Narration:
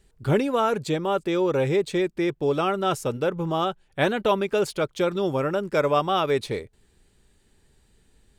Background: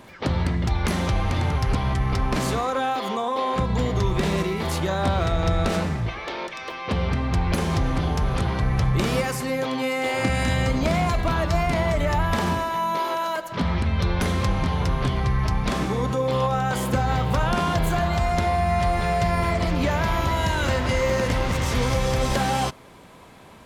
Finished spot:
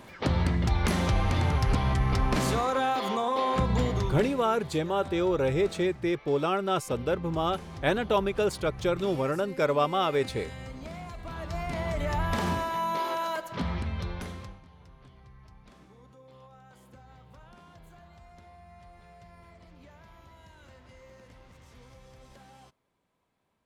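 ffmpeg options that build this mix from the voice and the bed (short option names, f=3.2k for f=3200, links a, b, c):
-filter_complex "[0:a]adelay=3850,volume=-3.5dB[a];[1:a]volume=11.5dB,afade=t=out:st=3.79:d=0.56:silence=0.149624,afade=t=in:st=11.19:d=1.26:silence=0.199526,afade=t=out:st=13.34:d=1.27:silence=0.0530884[b];[a][b]amix=inputs=2:normalize=0"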